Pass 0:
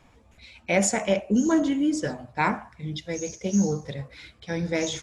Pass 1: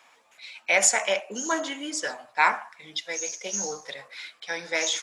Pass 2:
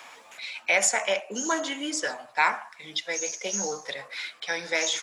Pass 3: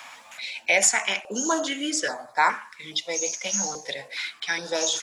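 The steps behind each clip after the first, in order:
HPF 910 Hz 12 dB/oct; gain +6 dB
three-band squash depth 40%
stepped notch 2.4 Hz 410–2800 Hz; gain +4 dB

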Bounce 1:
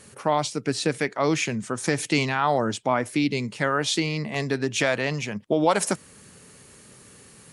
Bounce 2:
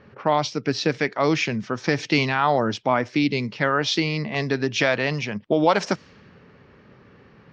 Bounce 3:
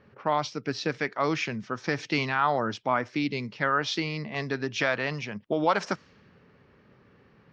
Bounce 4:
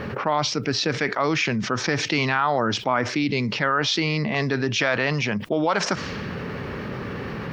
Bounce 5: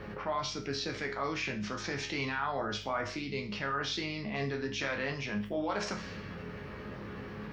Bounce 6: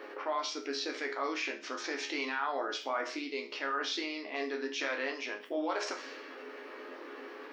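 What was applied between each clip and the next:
elliptic low-pass 5600 Hz, stop band 60 dB; low-pass opened by the level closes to 1700 Hz, open at -22.5 dBFS; gain +3 dB
dynamic EQ 1300 Hz, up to +6 dB, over -35 dBFS, Q 1.4; gain -7.5 dB
fast leveller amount 70%
hum 50 Hz, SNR 13 dB; resonator bank C#2 major, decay 0.37 s
brick-wall FIR high-pass 250 Hz

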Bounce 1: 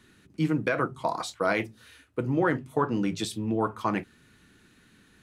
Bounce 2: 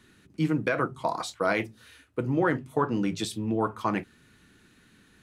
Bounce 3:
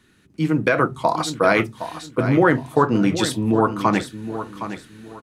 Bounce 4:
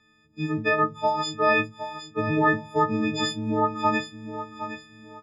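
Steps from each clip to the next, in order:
nothing audible
AGC gain up to 9.5 dB; on a send: feedback echo 0.765 s, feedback 28%, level -11 dB
frequency quantiser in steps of 6 st; air absorption 170 m; gain -7.5 dB

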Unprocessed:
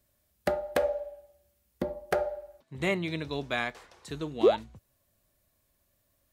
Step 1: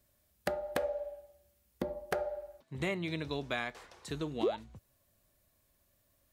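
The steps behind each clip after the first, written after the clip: compressor 2.5:1, threshold -33 dBFS, peak gain reduction 11 dB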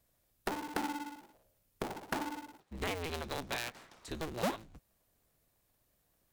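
cycle switcher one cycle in 2, inverted; gain -2.5 dB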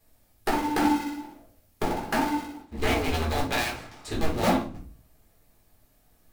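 shoebox room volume 280 m³, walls furnished, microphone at 3.9 m; gain +3.5 dB

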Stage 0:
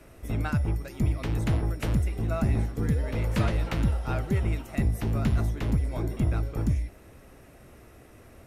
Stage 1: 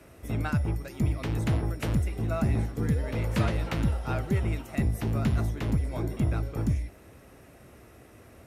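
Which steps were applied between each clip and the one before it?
HPF 57 Hz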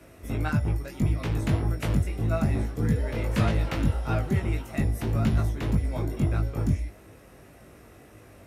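chorus 1.7 Hz, delay 18.5 ms, depth 3.1 ms; gain +4.5 dB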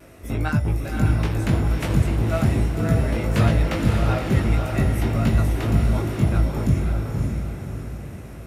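on a send: diffused feedback echo 0.56 s, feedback 46%, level -3 dB; on the sum: vibrato 0.4 Hz 11 cents; gain +4 dB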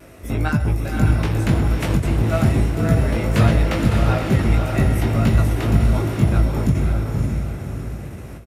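outdoor echo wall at 22 m, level -14 dB; ending taper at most 140 dB/s; gain +3 dB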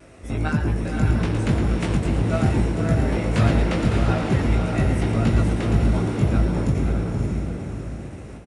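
frequency-shifting echo 0.112 s, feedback 46%, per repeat +120 Hz, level -9 dB; downsampling 22050 Hz; gain -3.5 dB

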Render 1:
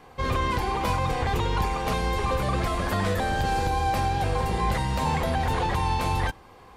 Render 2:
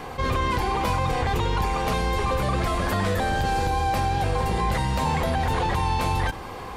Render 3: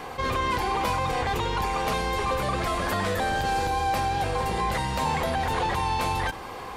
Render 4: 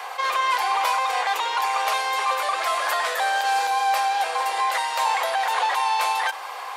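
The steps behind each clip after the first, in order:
fast leveller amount 50%
low shelf 240 Hz -7.5 dB
HPF 660 Hz 24 dB/oct; gain +5.5 dB

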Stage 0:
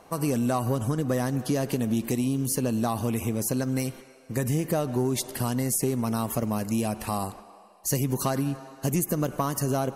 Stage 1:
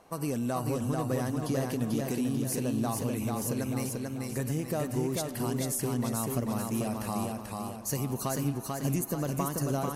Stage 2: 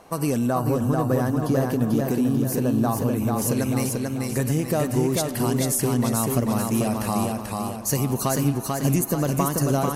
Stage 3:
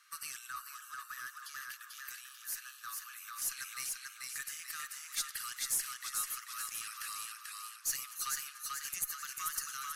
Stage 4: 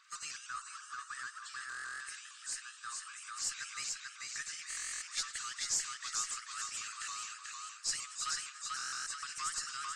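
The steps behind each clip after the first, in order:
warbling echo 0.44 s, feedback 46%, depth 56 cents, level -3 dB; gain -6 dB
spectral gain 0.47–3.38, 1800–12000 Hz -7 dB; gain +8.5 dB
rippled Chebyshev high-pass 1200 Hz, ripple 3 dB; in parallel at -6 dB: one-sided clip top -36.5 dBFS; on the sum: gain -8.5 dB
nonlinear frequency compression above 3500 Hz 1.5:1; stuck buffer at 1.68/4.69/8.74, samples 1024, times 13; shaped vibrato saw up 6.5 Hz, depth 100 cents; gain +1 dB

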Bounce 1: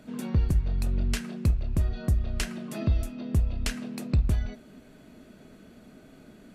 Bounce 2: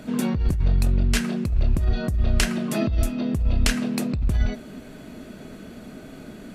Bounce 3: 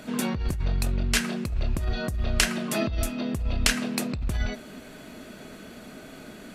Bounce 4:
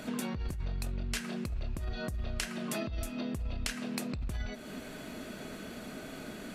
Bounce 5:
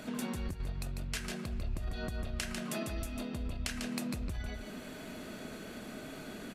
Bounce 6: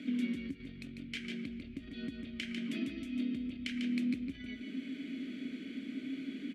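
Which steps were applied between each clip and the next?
negative-ratio compressor -27 dBFS, ratio -1; gain +8 dB
low shelf 470 Hz -9 dB; gain +2.5 dB
compressor 4:1, threshold -34 dBFS, peak gain reduction 15 dB
echo 0.147 s -5.5 dB; gain -2.5 dB
vowel filter i; gain +11.5 dB

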